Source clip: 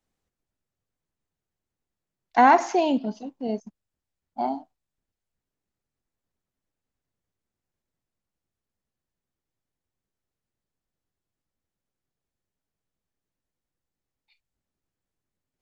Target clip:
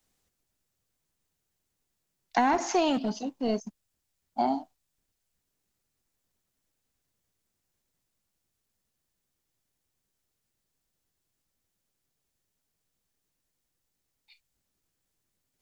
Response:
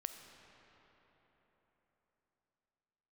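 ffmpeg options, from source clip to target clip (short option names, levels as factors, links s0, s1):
-filter_complex "[0:a]highshelf=f=3000:g=10,acrossover=split=420[s0][s1];[s0]asoftclip=type=hard:threshold=0.0299[s2];[s1]acompressor=threshold=0.0501:ratio=10[s3];[s2][s3]amix=inputs=2:normalize=0,volume=1.33"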